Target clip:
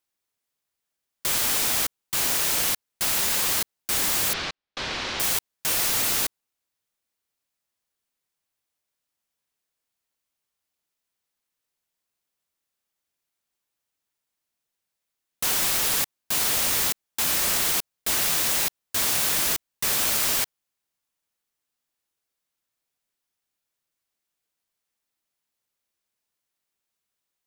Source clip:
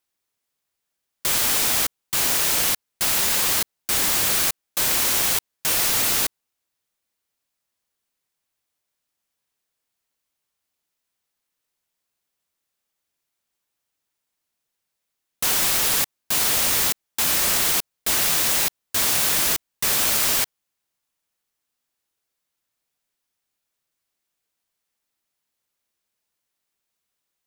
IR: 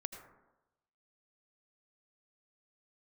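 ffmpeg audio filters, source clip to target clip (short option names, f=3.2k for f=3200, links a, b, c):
-filter_complex "[0:a]asettb=1/sr,asplit=3[a][b][c];[a]atrim=end=4.334[d];[b]atrim=start=4.33:end=5.2,asetpts=PTS-STARTPTS,afade=t=in:d=0.004:c=qsin,afade=t=out:st=0.866:d=0.004:c=qsin,lowpass=f=4.6k:w=0.5412,lowpass=f=4.6k:w=1.3066[e];[c]atrim=start=5.196[f];[d][e]acrossfade=d=0.004:c1=hsin:c2=qsin[g];[g][f]acrossfade=d=0.004:c1=qsin:c2=hsin,volume=-3dB"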